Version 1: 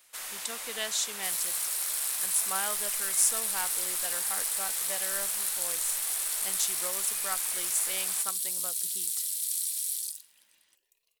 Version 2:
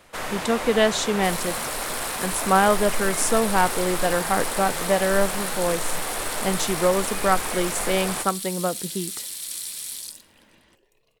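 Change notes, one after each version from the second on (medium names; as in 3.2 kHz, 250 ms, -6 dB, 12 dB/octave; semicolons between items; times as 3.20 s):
master: remove pre-emphasis filter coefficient 0.97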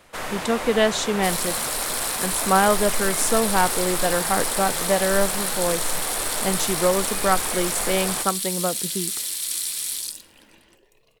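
second sound +5.5 dB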